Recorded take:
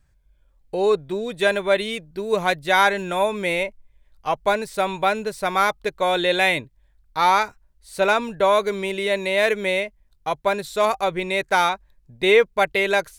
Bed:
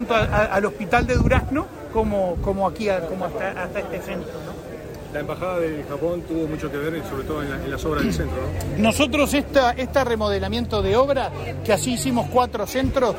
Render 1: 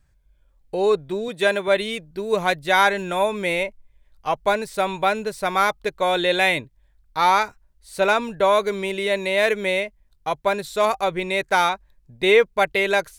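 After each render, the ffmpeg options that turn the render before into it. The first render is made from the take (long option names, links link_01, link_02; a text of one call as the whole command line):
ffmpeg -i in.wav -filter_complex "[0:a]asettb=1/sr,asplit=3[link_01][link_02][link_03];[link_01]atrim=end=1.284[link_04];[link_02]atrim=start=1.28:end=1.68,asetpts=PTS-STARTPTS,afade=type=in:duration=0.004:curve=qsin,afade=type=out:start_time=0.396:duration=0.004:curve=qsin,highpass=140[link_05];[link_03]atrim=start=1.676[link_06];[link_04][link_05]acrossfade=duration=0.004:curve1=hsin:curve2=qsin[link_07];[link_07][link_06]acrossfade=duration=0.004:curve1=qsin:curve2=hsin" out.wav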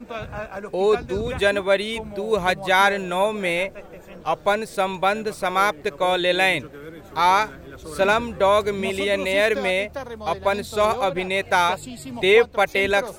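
ffmpeg -i in.wav -i bed.wav -filter_complex "[1:a]volume=-13dB[link_01];[0:a][link_01]amix=inputs=2:normalize=0" out.wav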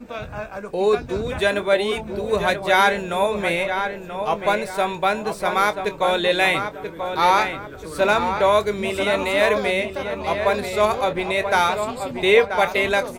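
ffmpeg -i in.wav -filter_complex "[0:a]asplit=2[link_01][link_02];[link_02]adelay=24,volume=-12dB[link_03];[link_01][link_03]amix=inputs=2:normalize=0,asplit=2[link_04][link_05];[link_05]adelay=984,lowpass=frequency=2800:poles=1,volume=-7dB,asplit=2[link_06][link_07];[link_07]adelay=984,lowpass=frequency=2800:poles=1,volume=0.38,asplit=2[link_08][link_09];[link_09]adelay=984,lowpass=frequency=2800:poles=1,volume=0.38,asplit=2[link_10][link_11];[link_11]adelay=984,lowpass=frequency=2800:poles=1,volume=0.38[link_12];[link_06][link_08][link_10][link_12]amix=inputs=4:normalize=0[link_13];[link_04][link_13]amix=inputs=2:normalize=0" out.wav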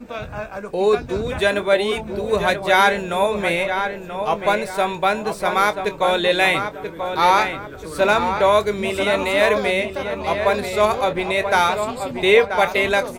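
ffmpeg -i in.wav -af "volume=1.5dB,alimiter=limit=-3dB:level=0:latency=1" out.wav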